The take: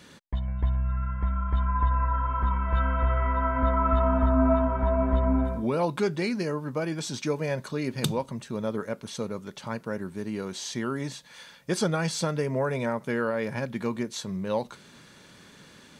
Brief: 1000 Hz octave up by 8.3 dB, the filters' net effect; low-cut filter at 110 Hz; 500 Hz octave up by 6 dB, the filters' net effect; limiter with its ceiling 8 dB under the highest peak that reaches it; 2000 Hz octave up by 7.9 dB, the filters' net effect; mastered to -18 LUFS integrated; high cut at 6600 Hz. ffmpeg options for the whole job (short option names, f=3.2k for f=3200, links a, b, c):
-af "highpass=110,lowpass=6.6k,equalizer=f=500:t=o:g=5,equalizer=f=1k:t=o:g=6.5,equalizer=f=2k:t=o:g=7.5,volume=8dB,alimiter=limit=-7dB:level=0:latency=1"